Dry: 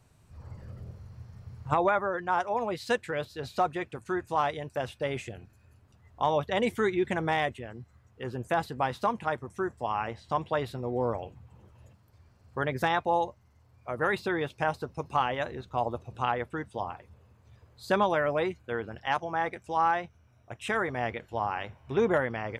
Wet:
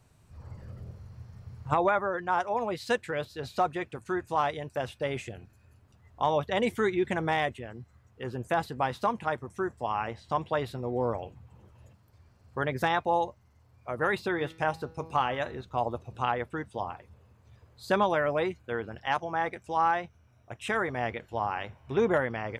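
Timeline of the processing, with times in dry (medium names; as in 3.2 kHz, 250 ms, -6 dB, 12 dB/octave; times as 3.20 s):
14.29–15.59 s: de-hum 161.8 Hz, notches 28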